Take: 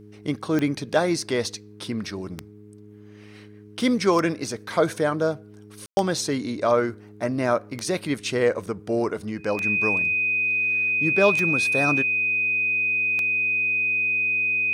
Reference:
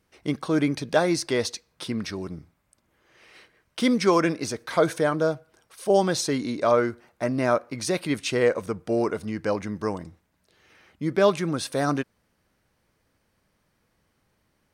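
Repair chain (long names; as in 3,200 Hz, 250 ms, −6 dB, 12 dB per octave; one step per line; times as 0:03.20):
click removal
hum removal 104.4 Hz, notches 4
notch filter 2,500 Hz, Q 30
ambience match 0:05.86–0:05.97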